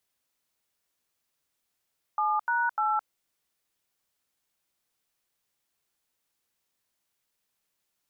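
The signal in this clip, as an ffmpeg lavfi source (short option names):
-f lavfi -i "aevalsrc='0.0501*clip(min(mod(t,0.299),0.215-mod(t,0.299))/0.002,0,1)*(eq(floor(t/0.299),0)*(sin(2*PI*852*mod(t,0.299))+sin(2*PI*1209*mod(t,0.299)))+eq(floor(t/0.299),1)*(sin(2*PI*941*mod(t,0.299))+sin(2*PI*1477*mod(t,0.299)))+eq(floor(t/0.299),2)*(sin(2*PI*852*mod(t,0.299))+sin(2*PI*1336*mod(t,0.299))))':d=0.897:s=44100"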